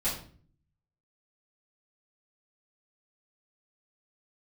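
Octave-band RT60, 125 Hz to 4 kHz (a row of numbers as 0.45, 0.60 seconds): 0.95, 0.75, 0.50, 0.40, 0.40, 0.35 seconds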